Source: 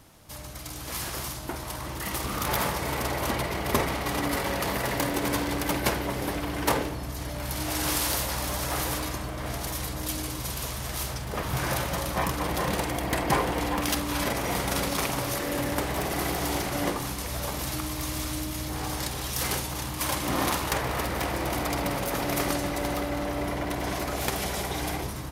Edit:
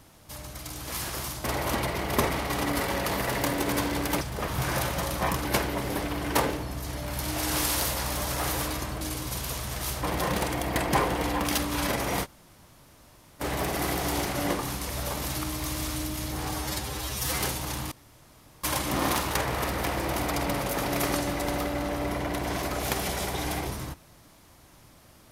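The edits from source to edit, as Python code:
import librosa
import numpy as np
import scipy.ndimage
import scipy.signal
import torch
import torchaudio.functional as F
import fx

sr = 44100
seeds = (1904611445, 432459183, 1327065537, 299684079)

y = fx.edit(x, sr, fx.cut(start_s=1.44, length_s=1.56),
    fx.cut(start_s=9.33, length_s=0.81),
    fx.move(start_s=11.16, length_s=1.24, to_s=5.77),
    fx.room_tone_fill(start_s=14.61, length_s=1.18, crossfade_s=0.06),
    fx.stretch_span(start_s=18.91, length_s=0.57, factor=1.5),
    fx.insert_room_tone(at_s=20.0, length_s=0.72), tone=tone)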